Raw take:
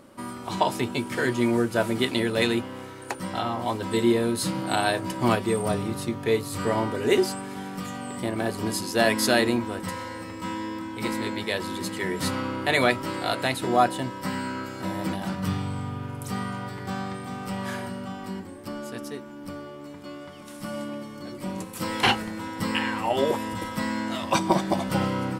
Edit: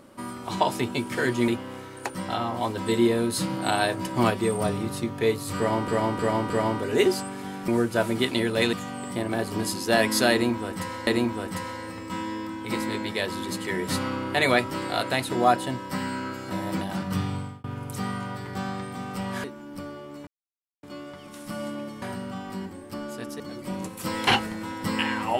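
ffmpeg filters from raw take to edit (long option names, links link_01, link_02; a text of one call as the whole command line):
ffmpeg -i in.wav -filter_complex "[0:a]asplit=13[link_01][link_02][link_03][link_04][link_05][link_06][link_07][link_08][link_09][link_10][link_11][link_12][link_13];[link_01]atrim=end=1.482[link_14];[link_02]atrim=start=2.528:end=6.932[link_15];[link_03]atrim=start=6.618:end=6.932[link_16];[link_04]atrim=start=6.618:end=6.932[link_17];[link_05]atrim=start=6.618:end=7.802[link_18];[link_06]atrim=start=1.478:end=2.532[link_19];[link_07]atrim=start=7.798:end=10.142[link_20];[link_08]atrim=start=9.388:end=15.96,asetpts=PTS-STARTPTS,afade=type=out:start_time=6.292:duration=0.28[link_21];[link_09]atrim=start=15.96:end=17.762,asetpts=PTS-STARTPTS,afade=type=in:duration=0.004:curve=hsin[link_22];[link_10]atrim=start=19.138:end=19.97,asetpts=PTS-STARTPTS,afade=type=out:start_time=0.828:duration=0.004:curve=hsin,apad=pad_dur=0.56[link_23];[link_11]atrim=start=19.97:end=21.162,asetpts=PTS-STARTPTS,afade=type=in:duration=0.004:curve=hsin[link_24];[link_12]atrim=start=17.758:end=19.142[link_25];[link_13]atrim=start=21.158[link_26];[link_14][link_15]acrossfade=duration=0.004:curve1=hsin:curve2=hsin[link_27];[link_27][link_16]acrossfade=duration=0.004:curve1=hsin:curve2=hsin[link_28];[link_28][link_17]acrossfade=duration=0.004:curve1=hsin:curve2=hsin[link_29];[link_29][link_18]acrossfade=duration=0.004:curve1=hsin:curve2=hsin[link_30];[link_30][link_19]acrossfade=duration=0.004:curve1=hsin:curve2=hsin[link_31];[link_31][link_20]acrossfade=duration=0.004:curve1=hsin:curve2=hsin[link_32];[link_21][link_22]concat=n=2:v=0:a=1[link_33];[link_32][link_33]acrossfade=duration=0.004:curve1=hsin:curve2=hsin[link_34];[link_23][link_24]concat=n=2:v=0:a=1[link_35];[link_34][link_35]acrossfade=duration=0.004:curve1=hsin:curve2=hsin[link_36];[link_36][link_25]acrossfade=duration=0.004:curve1=hsin:curve2=hsin[link_37];[link_37][link_26]acrossfade=duration=0.004:curve1=hsin:curve2=hsin" out.wav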